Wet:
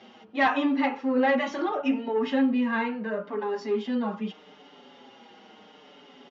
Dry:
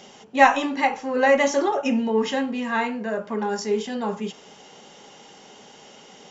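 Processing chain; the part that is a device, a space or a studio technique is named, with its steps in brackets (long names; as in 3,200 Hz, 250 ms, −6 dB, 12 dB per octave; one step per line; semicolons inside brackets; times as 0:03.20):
barber-pole flanger into a guitar amplifier (barber-pole flanger 5.7 ms −0.76 Hz; soft clipping −15 dBFS, distortion −14 dB; loudspeaker in its box 88–4,100 Hz, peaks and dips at 150 Hz −8 dB, 260 Hz +8 dB, 1,300 Hz +4 dB)
level −1.5 dB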